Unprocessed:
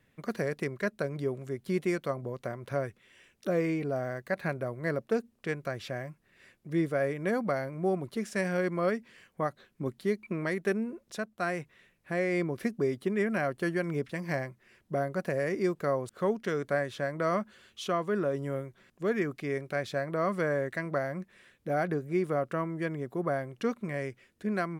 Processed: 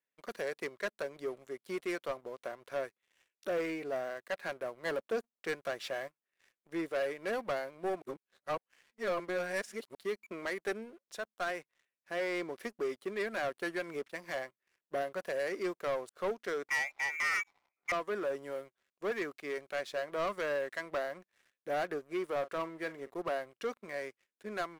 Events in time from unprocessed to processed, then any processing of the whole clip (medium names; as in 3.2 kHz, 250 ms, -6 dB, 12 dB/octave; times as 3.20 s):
4.85–6.08 s: waveshaping leveller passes 1
8.02–9.95 s: reverse
16.68–17.92 s: frequency inversion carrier 2.5 kHz
22.38–23.14 s: doubling 43 ms -13 dB
whole clip: high-pass 450 Hz 12 dB/octave; waveshaping leveller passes 3; upward expansion 1.5:1, over -36 dBFS; trim -9 dB